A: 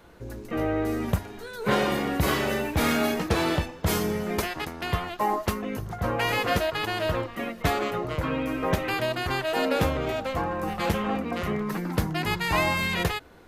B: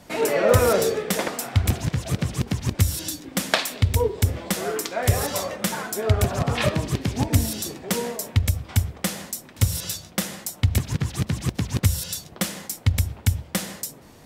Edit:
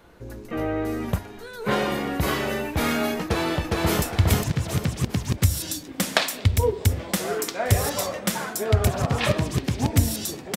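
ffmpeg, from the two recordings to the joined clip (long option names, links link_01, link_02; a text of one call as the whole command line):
ffmpeg -i cue0.wav -i cue1.wav -filter_complex "[0:a]apad=whole_dur=10.56,atrim=end=10.56,atrim=end=4.022[link_01];[1:a]atrim=start=1.388:end=7.93[link_02];[link_01][link_02]acrossfade=duration=0.004:curve1=hsin:curve2=hsin,asplit=2[link_03][link_04];[link_04]afade=type=in:start_time=3.23:duration=0.01,afade=type=out:start_time=4.02:duration=0.01,aecho=0:1:410|820|1230|1640|2050:0.891251|0.311938|0.109178|0.0382124|0.0133743[link_05];[link_03][link_05]amix=inputs=2:normalize=0" out.wav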